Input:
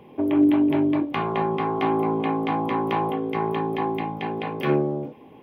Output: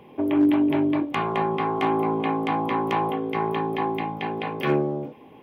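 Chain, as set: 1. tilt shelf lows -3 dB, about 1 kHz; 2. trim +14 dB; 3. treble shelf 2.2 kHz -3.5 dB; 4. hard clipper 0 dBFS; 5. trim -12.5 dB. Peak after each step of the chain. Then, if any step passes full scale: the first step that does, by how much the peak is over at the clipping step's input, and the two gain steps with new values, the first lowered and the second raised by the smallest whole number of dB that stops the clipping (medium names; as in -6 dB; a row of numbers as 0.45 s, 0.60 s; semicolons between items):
-9.0 dBFS, +5.0 dBFS, +3.5 dBFS, 0.0 dBFS, -12.5 dBFS; step 2, 3.5 dB; step 2 +10 dB, step 5 -8.5 dB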